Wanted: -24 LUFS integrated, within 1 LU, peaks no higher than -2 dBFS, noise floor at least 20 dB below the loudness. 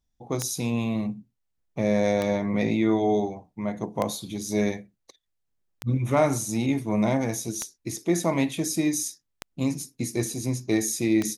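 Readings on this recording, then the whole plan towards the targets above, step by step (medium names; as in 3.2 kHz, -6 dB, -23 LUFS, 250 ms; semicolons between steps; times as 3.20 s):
clicks found 7; loudness -26.5 LUFS; peak level -9.5 dBFS; loudness target -24.0 LUFS
-> de-click; trim +2.5 dB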